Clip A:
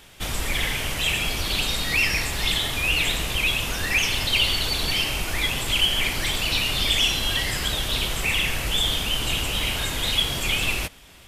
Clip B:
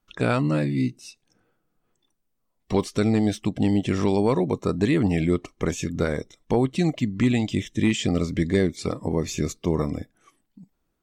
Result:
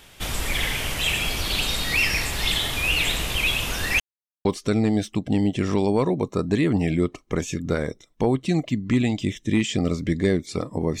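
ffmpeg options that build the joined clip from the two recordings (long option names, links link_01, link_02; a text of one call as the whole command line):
ffmpeg -i cue0.wav -i cue1.wav -filter_complex "[0:a]apad=whole_dur=11,atrim=end=11,asplit=2[link_01][link_02];[link_01]atrim=end=4,asetpts=PTS-STARTPTS,afade=type=out:start_time=3.996:duration=0.004:curve=hsin[link_03];[link_02]atrim=start=4:end=4.45,asetpts=PTS-STARTPTS,volume=0[link_04];[1:a]atrim=start=2.75:end=9.3,asetpts=PTS-STARTPTS,afade=type=in:duration=0.004:curve=hsin[link_05];[link_03][link_04][link_05]concat=n=3:v=0:a=1" out.wav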